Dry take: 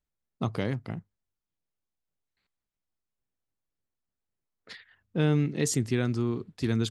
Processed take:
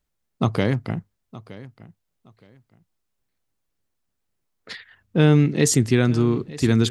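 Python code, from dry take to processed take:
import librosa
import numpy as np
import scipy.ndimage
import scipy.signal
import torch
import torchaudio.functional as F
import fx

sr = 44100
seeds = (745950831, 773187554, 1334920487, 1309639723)

y = fx.echo_feedback(x, sr, ms=918, feedback_pct=22, wet_db=-18.5)
y = F.gain(torch.from_numpy(y), 9.0).numpy()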